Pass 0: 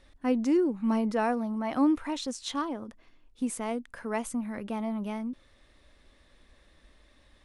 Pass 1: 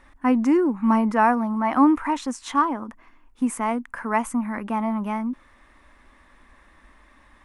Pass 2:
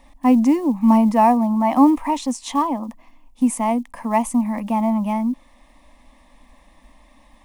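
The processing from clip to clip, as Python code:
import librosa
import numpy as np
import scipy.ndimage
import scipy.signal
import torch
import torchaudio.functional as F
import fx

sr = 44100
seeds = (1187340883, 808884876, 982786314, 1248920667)

y1 = fx.graphic_eq(x, sr, hz=(125, 250, 500, 1000, 2000, 4000), db=(-6, 5, -6, 11, 5, -9))
y1 = y1 * librosa.db_to_amplitude(4.5)
y2 = fx.block_float(y1, sr, bits=7)
y2 = fx.fixed_phaser(y2, sr, hz=390.0, stages=6)
y2 = y2 * librosa.db_to_amplitude(6.0)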